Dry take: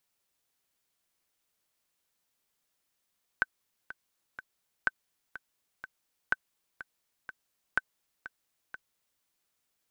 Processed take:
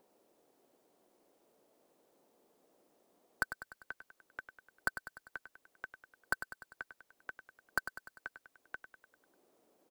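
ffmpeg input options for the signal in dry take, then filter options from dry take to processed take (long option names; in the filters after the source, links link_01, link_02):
-f lavfi -i "aevalsrc='pow(10,(-11.5-16*gte(mod(t,3*60/124),60/124))/20)*sin(2*PI*1530*mod(t,60/124))*exp(-6.91*mod(t,60/124)/0.03)':duration=5.8:sample_rate=44100"
-filter_complex "[0:a]acrossover=split=260|650|1600[link_01][link_02][link_03][link_04];[link_02]acompressor=mode=upward:threshold=-51dB:ratio=2.5[link_05];[link_04]aeval=exprs='(mod(50.1*val(0)+1,2)-1)/50.1':channel_layout=same[link_06];[link_01][link_05][link_03][link_06]amix=inputs=4:normalize=0,aecho=1:1:99|198|297|396|495|594:0.299|0.167|0.0936|0.0524|0.0294|0.0164"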